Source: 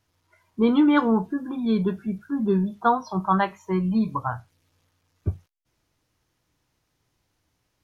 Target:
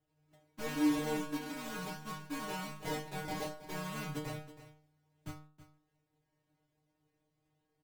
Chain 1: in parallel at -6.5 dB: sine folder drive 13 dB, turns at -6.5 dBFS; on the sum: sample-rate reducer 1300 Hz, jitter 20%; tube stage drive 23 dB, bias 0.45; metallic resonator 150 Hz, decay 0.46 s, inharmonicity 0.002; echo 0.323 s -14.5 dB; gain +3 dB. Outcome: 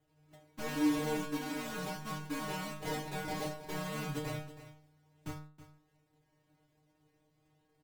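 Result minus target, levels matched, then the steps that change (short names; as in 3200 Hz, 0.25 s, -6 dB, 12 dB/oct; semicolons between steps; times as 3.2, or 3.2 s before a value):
sine folder: distortion +22 dB
change: sine folder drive 2 dB, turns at -6.5 dBFS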